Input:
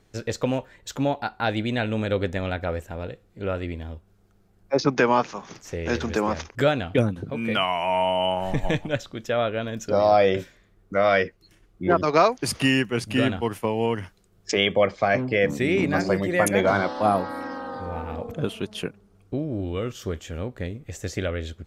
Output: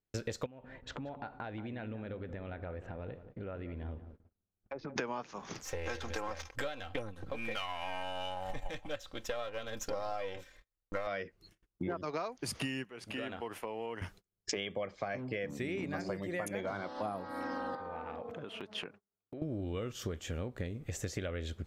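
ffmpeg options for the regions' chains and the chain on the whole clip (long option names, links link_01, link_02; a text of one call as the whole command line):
ffmpeg -i in.wav -filter_complex "[0:a]asettb=1/sr,asplit=3[link_01][link_02][link_03];[link_01]atrim=end=0.464[link_04];[link_02]atrim=start=0.46:end=4.96,asetpts=PTS-STARTPTS,afade=type=in:duration=0.004:curve=qsin,afade=type=out:start_time=4.496:duration=0.004:curve=qsin,lowpass=2300,acompressor=threshold=-38dB:ratio=12:attack=3.2:release=140:knee=1:detection=peak,asplit=2[link_05][link_06];[link_06]adelay=181,lowpass=frequency=1200:poles=1,volume=-11dB,asplit=2[link_07][link_08];[link_08]adelay=181,lowpass=frequency=1200:poles=1,volume=0.5,asplit=2[link_09][link_10];[link_10]adelay=181,lowpass=frequency=1200:poles=1,volume=0.5,asplit=2[link_11][link_12];[link_12]adelay=181,lowpass=frequency=1200:poles=1,volume=0.5,asplit=2[link_13][link_14];[link_14]adelay=181,lowpass=frequency=1200:poles=1,volume=0.5[link_15];[link_05][link_07][link_09][link_11][link_13][link_15]amix=inputs=6:normalize=0,atrim=end_sample=198450[link_16];[link_03]atrim=start=4.956[link_17];[link_04][link_16]acrossfade=duration=0.004:curve1=hsin:curve2=qsin[link_18];[link_18][link_17]acrossfade=duration=0.004:curve1=qsin:curve2=hsin,asettb=1/sr,asplit=3[link_19][link_20][link_21];[link_19]atrim=end=5.634[link_22];[link_20]atrim=start=5.63:end=11.07,asetpts=PTS-STARTPTS,afade=type=in:duration=0.004:curve=qsin,afade=type=out:start_time=5.436:duration=0.004:curve=qsin,aeval=exprs='if(lt(val(0),0),0.447*val(0),val(0))':channel_layout=same,equalizer=frequency=230:width=1.5:gain=-13,aecho=1:1:3.8:0.58,atrim=end_sample=239904[link_23];[link_21]atrim=start=11.066[link_24];[link_22][link_23]acrossfade=duration=0.004:curve1=hsin:curve2=qsin[link_25];[link_25][link_24]acrossfade=duration=0.004:curve1=qsin:curve2=hsin,asettb=1/sr,asplit=3[link_26][link_27][link_28];[link_26]atrim=end=12.844[link_29];[link_27]atrim=start=12.84:end=14.02,asetpts=PTS-STARTPTS,afade=type=in:duration=0.004:curve=qsin,afade=type=out:start_time=1.176:duration=0.004:curve=qsin,bass=frequency=250:gain=-13,treble=frequency=4000:gain=-7,acompressor=threshold=-40dB:ratio=2.5:attack=3.2:release=140:knee=1:detection=peak[link_30];[link_28]atrim=start=14.016[link_31];[link_29][link_30]acrossfade=duration=0.004:curve1=hsin:curve2=qsin[link_32];[link_32][link_31]acrossfade=duration=0.004:curve1=qsin:curve2=hsin,asettb=1/sr,asplit=3[link_33][link_34][link_35];[link_33]atrim=end=17.754[link_36];[link_34]atrim=start=17.75:end=19.42,asetpts=PTS-STARTPTS,afade=type=in:duration=0.004:curve=qsin,afade=type=out:start_time=1.666:duration=0.004:curve=qsin,lowpass=1900,acompressor=threshold=-35dB:ratio=6:attack=3.2:release=140:knee=1:detection=peak,aemphasis=mode=production:type=riaa[link_37];[link_35]atrim=start=19.416[link_38];[link_36][link_37]acrossfade=duration=0.004:curve1=hsin:curve2=qsin[link_39];[link_39][link_38]acrossfade=duration=0.004:curve1=qsin:curve2=hsin,agate=range=-32dB:threshold=-52dB:ratio=16:detection=peak,acompressor=threshold=-34dB:ratio=12" out.wav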